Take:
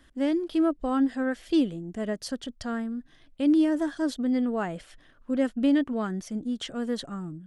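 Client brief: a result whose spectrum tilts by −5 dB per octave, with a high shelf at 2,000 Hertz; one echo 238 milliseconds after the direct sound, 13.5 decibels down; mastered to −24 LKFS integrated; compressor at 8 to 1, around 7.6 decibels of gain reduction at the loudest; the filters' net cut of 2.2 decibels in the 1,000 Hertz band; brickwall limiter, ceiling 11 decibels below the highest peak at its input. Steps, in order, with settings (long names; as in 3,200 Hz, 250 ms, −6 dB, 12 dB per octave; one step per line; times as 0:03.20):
parametric band 1,000 Hz −4.5 dB
high-shelf EQ 2,000 Hz +4.5 dB
downward compressor 8 to 1, threshold −26 dBFS
brickwall limiter −30 dBFS
single-tap delay 238 ms −13.5 dB
level +13.5 dB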